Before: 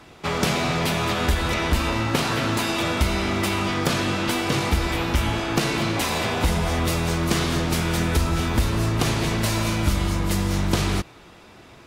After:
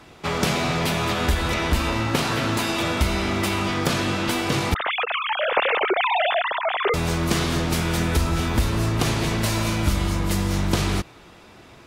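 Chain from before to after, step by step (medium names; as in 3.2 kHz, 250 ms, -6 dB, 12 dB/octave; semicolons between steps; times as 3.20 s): 4.74–6.94 s: formants replaced by sine waves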